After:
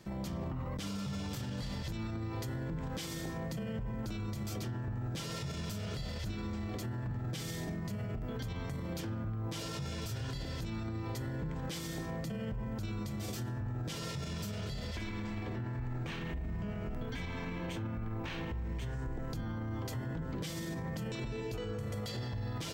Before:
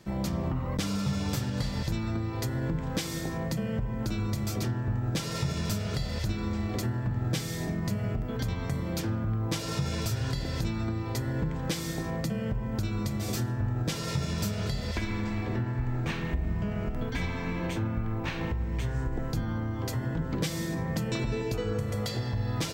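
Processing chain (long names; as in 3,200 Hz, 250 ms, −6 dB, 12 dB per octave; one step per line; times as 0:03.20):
dynamic equaliser 3,100 Hz, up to +5 dB, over −58 dBFS, Q 6.4
brickwall limiter −29 dBFS, peak gain reduction 11 dB
level −2 dB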